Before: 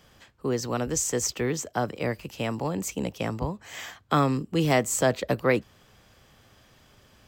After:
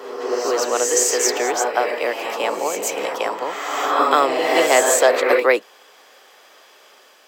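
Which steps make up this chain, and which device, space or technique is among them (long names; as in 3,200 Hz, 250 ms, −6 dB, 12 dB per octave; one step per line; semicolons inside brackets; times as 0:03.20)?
ghost voice (reversed playback; convolution reverb RT60 1.8 s, pre-delay 117 ms, DRR 0.5 dB; reversed playback; high-pass filter 410 Hz 24 dB per octave)
level +8.5 dB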